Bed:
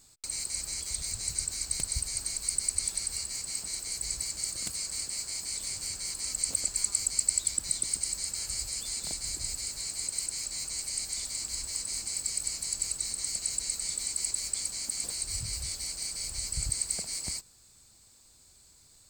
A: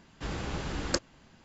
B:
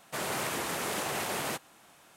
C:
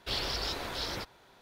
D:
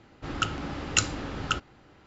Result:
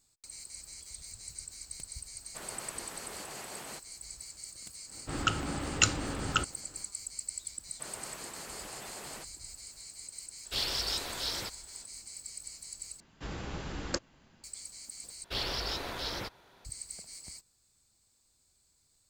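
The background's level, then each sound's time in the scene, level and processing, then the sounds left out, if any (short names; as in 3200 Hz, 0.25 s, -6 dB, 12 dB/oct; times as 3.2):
bed -12 dB
2.22 add B -12 dB
4.85 add D -1 dB, fades 0.10 s
7.67 add B -13 dB
10.45 add C -4.5 dB + high shelf 3500 Hz +11 dB
13 replace with A -4.5 dB
15.24 replace with C -1 dB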